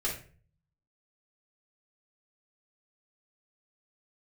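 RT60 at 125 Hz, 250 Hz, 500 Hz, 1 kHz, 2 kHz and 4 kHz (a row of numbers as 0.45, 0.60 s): 0.90, 0.60, 0.50, 0.35, 0.40, 0.30 s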